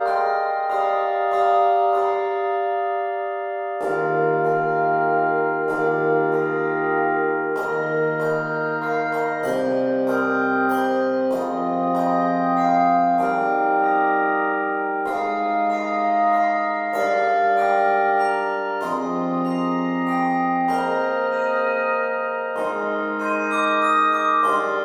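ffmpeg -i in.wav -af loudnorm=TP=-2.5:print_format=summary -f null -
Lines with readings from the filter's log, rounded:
Input Integrated:    -20.9 LUFS
Input True Peak:      -7.0 dBTP
Input LRA:             2.1 LU
Input Threshold:     -30.9 LUFS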